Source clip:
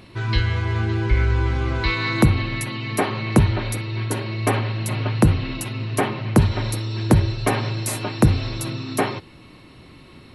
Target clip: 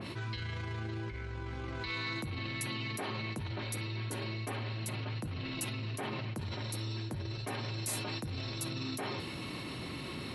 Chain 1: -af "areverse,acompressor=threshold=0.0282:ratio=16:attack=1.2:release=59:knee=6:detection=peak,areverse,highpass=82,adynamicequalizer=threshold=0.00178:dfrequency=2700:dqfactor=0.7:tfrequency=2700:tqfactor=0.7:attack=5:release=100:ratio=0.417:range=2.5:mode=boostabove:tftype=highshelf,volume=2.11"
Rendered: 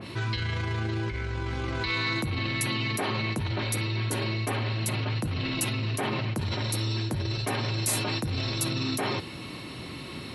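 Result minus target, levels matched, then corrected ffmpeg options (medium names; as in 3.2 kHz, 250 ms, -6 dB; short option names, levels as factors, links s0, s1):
compression: peak gain reduction -9 dB
-af "areverse,acompressor=threshold=0.00944:ratio=16:attack=1.2:release=59:knee=6:detection=peak,areverse,highpass=82,adynamicequalizer=threshold=0.00178:dfrequency=2700:dqfactor=0.7:tfrequency=2700:tqfactor=0.7:attack=5:release=100:ratio=0.417:range=2.5:mode=boostabove:tftype=highshelf,volume=2.11"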